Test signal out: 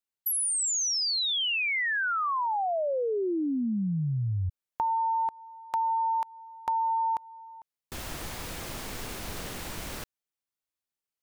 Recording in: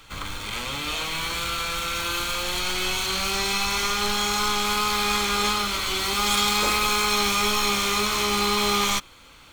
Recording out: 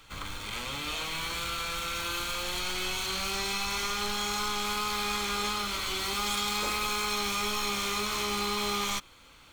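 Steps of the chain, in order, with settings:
downward compressor 3 to 1, threshold −22 dBFS
level −5.5 dB

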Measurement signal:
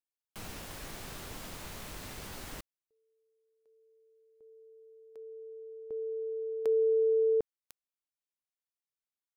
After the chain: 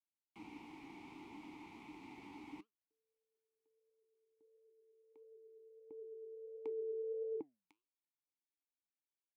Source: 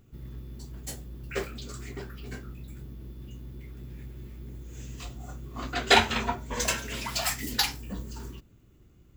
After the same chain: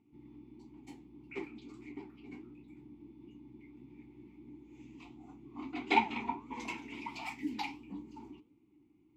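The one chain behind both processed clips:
formant filter u
flanger 1.5 Hz, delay 4.2 ms, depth 7 ms, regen +82%
level +9.5 dB

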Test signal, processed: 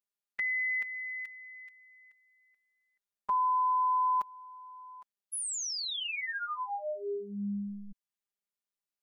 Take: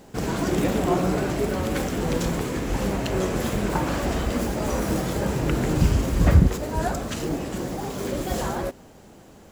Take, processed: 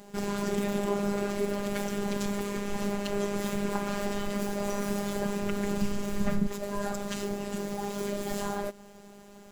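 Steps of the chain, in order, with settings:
downward compressor 1.5 to 1, threshold −31 dBFS
phases set to zero 202 Hz

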